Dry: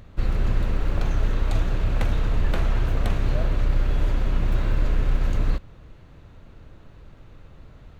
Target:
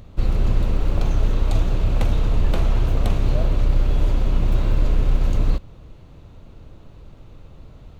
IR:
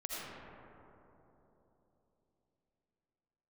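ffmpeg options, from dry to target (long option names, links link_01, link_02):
-af "equalizer=frequency=1700:width_type=o:width=0.83:gain=-8,volume=3.5dB"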